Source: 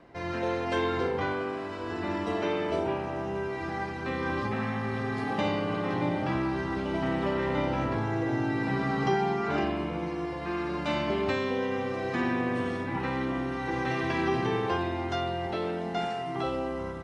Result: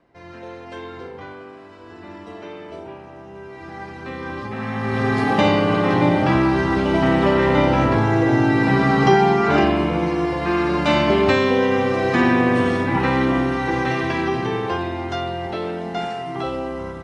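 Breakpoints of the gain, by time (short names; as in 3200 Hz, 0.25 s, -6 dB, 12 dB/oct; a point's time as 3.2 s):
3.29 s -6.5 dB
3.94 s +0.5 dB
4.48 s +0.5 dB
5.06 s +12 dB
13.38 s +12 dB
14.34 s +5 dB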